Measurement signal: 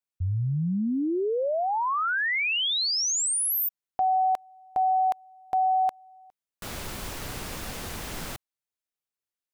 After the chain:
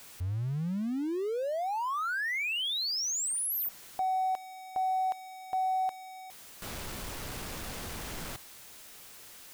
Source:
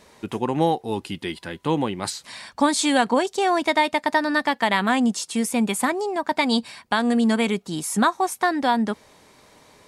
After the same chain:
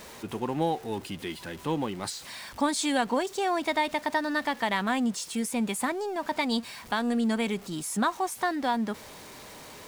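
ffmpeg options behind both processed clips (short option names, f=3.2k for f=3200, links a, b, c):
-af "aeval=exprs='val(0)+0.5*0.02*sgn(val(0))':c=same,volume=-7.5dB"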